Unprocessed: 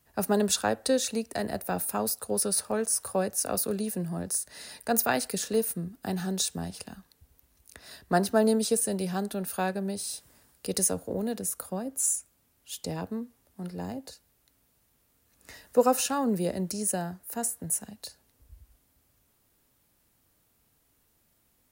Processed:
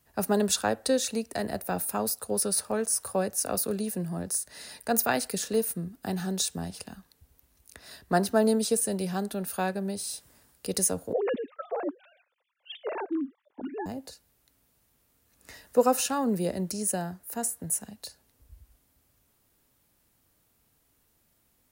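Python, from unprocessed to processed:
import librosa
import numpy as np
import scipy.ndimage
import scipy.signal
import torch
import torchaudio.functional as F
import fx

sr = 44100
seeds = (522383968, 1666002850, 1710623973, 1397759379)

y = fx.sine_speech(x, sr, at=(11.13, 13.86))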